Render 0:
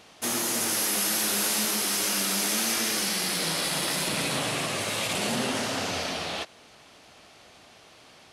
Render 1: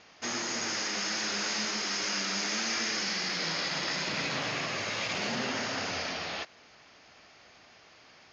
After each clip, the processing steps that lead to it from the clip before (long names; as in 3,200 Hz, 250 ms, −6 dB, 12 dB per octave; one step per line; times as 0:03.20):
Chebyshev low-pass with heavy ripple 6,800 Hz, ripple 6 dB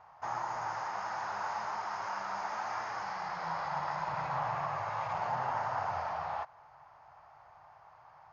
drawn EQ curve 150 Hz 0 dB, 220 Hz −22 dB, 460 Hz −12 dB, 880 Hz +11 dB, 2,400 Hz −17 dB, 3,500 Hz −22 dB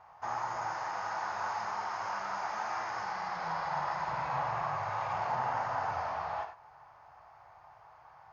reverb whose tail is shaped and stops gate 120 ms flat, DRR 4.5 dB